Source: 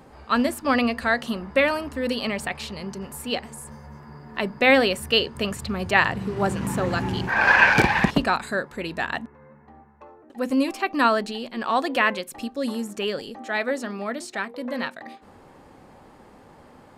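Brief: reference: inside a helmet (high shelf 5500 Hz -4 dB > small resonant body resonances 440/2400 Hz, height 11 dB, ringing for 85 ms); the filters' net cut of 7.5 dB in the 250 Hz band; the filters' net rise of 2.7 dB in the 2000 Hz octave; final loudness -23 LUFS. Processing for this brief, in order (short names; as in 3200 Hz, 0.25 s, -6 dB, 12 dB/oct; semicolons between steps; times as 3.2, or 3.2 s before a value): bell 250 Hz -9 dB; bell 2000 Hz +4 dB; high shelf 5500 Hz -4 dB; small resonant body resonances 440/2400 Hz, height 11 dB, ringing for 85 ms; gain -1.5 dB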